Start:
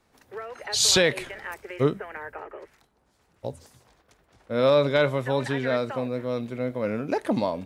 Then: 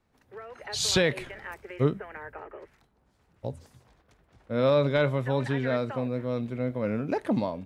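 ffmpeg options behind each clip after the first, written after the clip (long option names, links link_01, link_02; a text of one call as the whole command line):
ffmpeg -i in.wav -af "bass=frequency=250:gain=6,treble=frequency=4000:gain=-5,dynaudnorm=framelen=200:gausssize=5:maxgain=5dB,volume=-8dB" out.wav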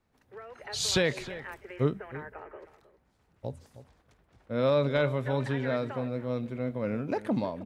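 ffmpeg -i in.wav -filter_complex "[0:a]asplit=2[link_01][link_02];[link_02]adelay=314.9,volume=-15dB,highshelf=frequency=4000:gain=-7.08[link_03];[link_01][link_03]amix=inputs=2:normalize=0,volume=-2.5dB" out.wav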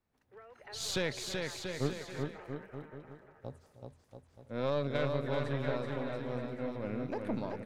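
ffmpeg -i in.wav -af "aeval=exprs='0.211*(cos(1*acos(clip(val(0)/0.211,-1,1)))-cos(1*PI/2))+0.0531*(cos(2*acos(clip(val(0)/0.211,-1,1)))-cos(2*PI/2))+0.0075*(cos(6*acos(clip(val(0)/0.211,-1,1)))-cos(6*PI/2))':channel_layout=same,aecho=1:1:380|684|927.2|1122|1277:0.631|0.398|0.251|0.158|0.1,volume=-8.5dB" out.wav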